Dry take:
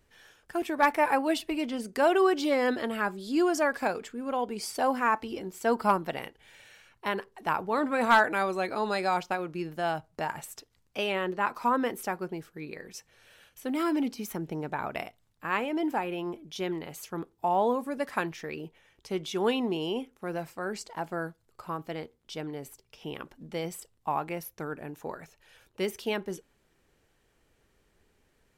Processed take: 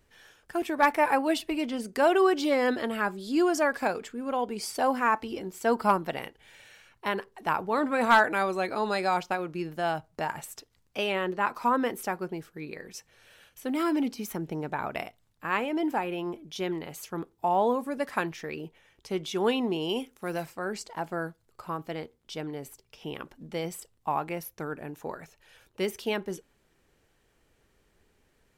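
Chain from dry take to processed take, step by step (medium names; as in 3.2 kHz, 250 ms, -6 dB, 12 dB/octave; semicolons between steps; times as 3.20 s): 19.89–20.46 s: treble shelf 2.9 kHz +9.5 dB; trim +1 dB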